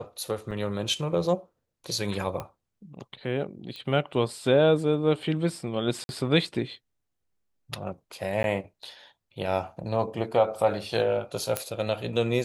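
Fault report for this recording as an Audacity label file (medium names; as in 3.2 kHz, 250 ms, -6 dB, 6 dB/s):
0.510000	0.520000	dropout 6.2 ms
2.400000	2.400000	pop -20 dBFS
3.760000	3.760000	pop -25 dBFS
6.040000	6.090000	dropout 51 ms
8.430000	8.440000	dropout
11.570000	11.570000	pop -9 dBFS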